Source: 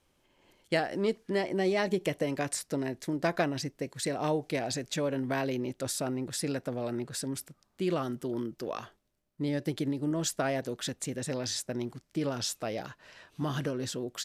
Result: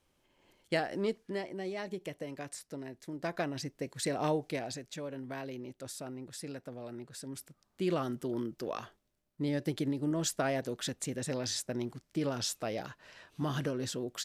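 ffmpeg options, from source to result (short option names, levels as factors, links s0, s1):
-af "volume=5.96,afade=t=out:st=1:d=0.55:silence=0.421697,afade=t=in:st=3.04:d=1.17:silence=0.316228,afade=t=out:st=4.21:d=0.64:silence=0.334965,afade=t=in:st=7.19:d=0.67:silence=0.375837"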